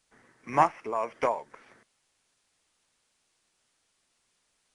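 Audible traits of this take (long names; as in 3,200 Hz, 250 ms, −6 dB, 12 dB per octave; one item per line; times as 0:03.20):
tremolo triangle 1.9 Hz, depth 65%
a quantiser's noise floor 12 bits, dither triangular
AAC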